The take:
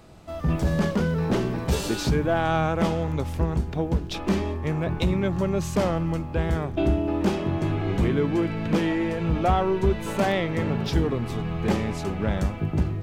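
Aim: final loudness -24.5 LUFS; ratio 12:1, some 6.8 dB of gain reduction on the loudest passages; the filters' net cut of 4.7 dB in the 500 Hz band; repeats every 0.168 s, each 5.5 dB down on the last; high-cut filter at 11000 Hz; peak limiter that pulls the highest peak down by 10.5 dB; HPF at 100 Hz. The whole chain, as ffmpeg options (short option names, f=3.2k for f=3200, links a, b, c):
-af "highpass=100,lowpass=11k,equalizer=f=500:t=o:g=-6.5,acompressor=threshold=-26dB:ratio=12,alimiter=level_in=1.5dB:limit=-24dB:level=0:latency=1,volume=-1.5dB,aecho=1:1:168|336|504|672|840|1008|1176:0.531|0.281|0.149|0.079|0.0419|0.0222|0.0118,volume=9dB"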